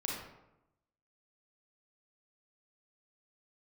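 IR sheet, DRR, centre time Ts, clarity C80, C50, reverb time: -3.0 dB, 60 ms, 4.0 dB, 0.0 dB, 0.90 s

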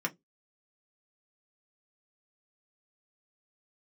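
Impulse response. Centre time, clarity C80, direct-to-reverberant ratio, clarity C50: 6 ms, 37.5 dB, 1.0 dB, 27.0 dB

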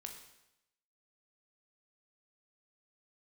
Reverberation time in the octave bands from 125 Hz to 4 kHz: 0.90 s, 0.90 s, 0.90 s, 0.85 s, 0.85 s, 0.85 s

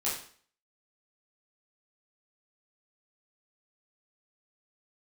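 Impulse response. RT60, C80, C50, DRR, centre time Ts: 0.50 s, 8.5 dB, 4.5 dB, -8.0 dB, 40 ms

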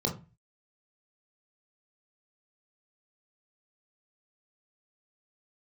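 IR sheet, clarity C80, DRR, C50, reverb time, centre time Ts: 17.0 dB, 0.0 dB, 10.5 dB, 0.30 s, 19 ms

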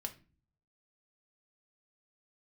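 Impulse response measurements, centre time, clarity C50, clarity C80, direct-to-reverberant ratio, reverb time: 7 ms, 15.0 dB, 21.0 dB, 4.5 dB, 0.35 s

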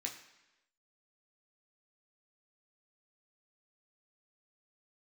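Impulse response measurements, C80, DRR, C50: 10.5 dB, -0.5 dB, 8.5 dB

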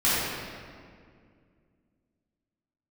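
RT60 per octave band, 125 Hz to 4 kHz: 2.9 s, 3.0 s, 2.3 s, 1.9 s, 1.8 s, 1.4 s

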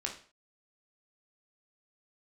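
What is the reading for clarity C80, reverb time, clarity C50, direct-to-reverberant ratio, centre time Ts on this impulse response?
13.5 dB, 0.40 s, 8.5 dB, 0.0 dB, 19 ms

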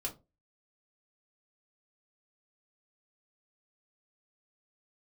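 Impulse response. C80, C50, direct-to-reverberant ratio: 23.0 dB, 15.0 dB, -1.5 dB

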